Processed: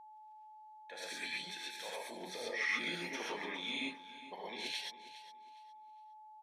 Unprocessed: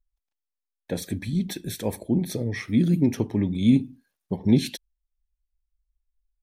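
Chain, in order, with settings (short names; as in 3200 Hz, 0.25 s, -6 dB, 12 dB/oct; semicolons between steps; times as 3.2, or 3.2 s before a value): differentiator; reverse; compressor, threshold -46 dBFS, peak gain reduction 13.5 dB; reverse; BPF 620–2400 Hz; transient shaper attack -4 dB, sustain +1 dB; on a send: feedback echo 0.41 s, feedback 25%, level -15 dB; on the sum: non-linear reverb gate 0.15 s rising, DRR -4.5 dB; whine 860 Hz -69 dBFS; gain +16 dB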